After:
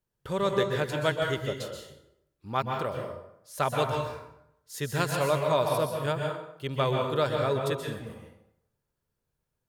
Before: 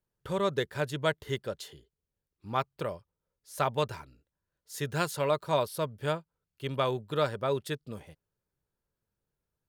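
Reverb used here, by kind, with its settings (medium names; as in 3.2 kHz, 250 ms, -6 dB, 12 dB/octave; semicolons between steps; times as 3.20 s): plate-style reverb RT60 0.78 s, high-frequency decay 0.7×, pre-delay 115 ms, DRR 1.5 dB; trim +1 dB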